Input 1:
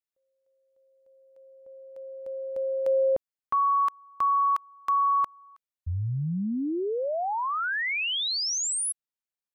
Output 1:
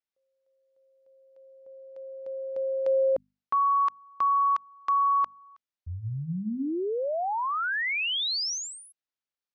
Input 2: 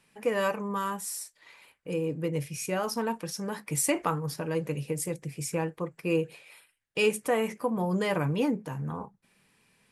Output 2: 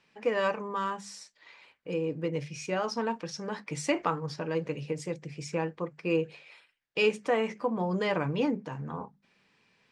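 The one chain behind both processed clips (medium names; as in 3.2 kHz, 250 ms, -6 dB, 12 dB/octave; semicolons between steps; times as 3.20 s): low-pass 5.9 kHz 24 dB/octave; bass shelf 100 Hz -8.5 dB; hum notches 50/100/150/200/250 Hz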